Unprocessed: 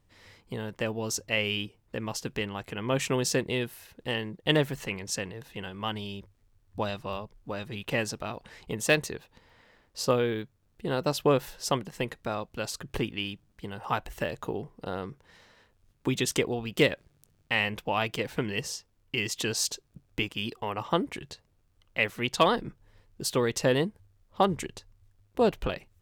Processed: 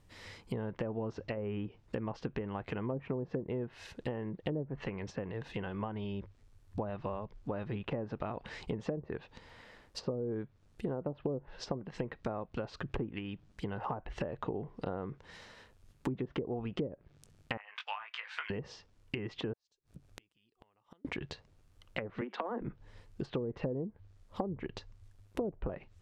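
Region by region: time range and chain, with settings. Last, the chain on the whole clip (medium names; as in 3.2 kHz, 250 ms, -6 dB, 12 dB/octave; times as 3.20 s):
17.57–18.50 s: gate -53 dBFS, range -8 dB + high-pass 1.2 kHz 24 dB/octave + doubling 19 ms -4 dB
19.53–21.05 s: compression 2:1, threshold -54 dBFS + inverted gate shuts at -38 dBFS, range -31 dB
22.21–22.61 s: steep high-pass 200 Hz 96 dB/octave + dynamic bell 1.9 kHz, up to +7 dB, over -37 dBFS, Q 0.72 + compression 16:1, threshold -22 dBFS
whole clip: low-pass that closes with the level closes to 510 Hz, closed at -21.5 dBFS; compression 6:1, threshold -37 dBFS; low-pass that closes with the level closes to 890 Hz, closed at -35.5 dBFS; trim +4 dB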